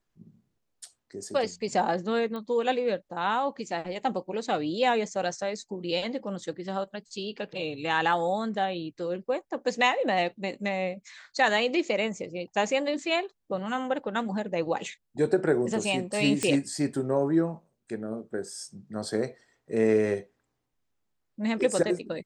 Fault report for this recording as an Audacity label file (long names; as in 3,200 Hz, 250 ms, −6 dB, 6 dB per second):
2.360000	2.360000	click −25 dBFS
16.430000	16.430000	click −13 dBFS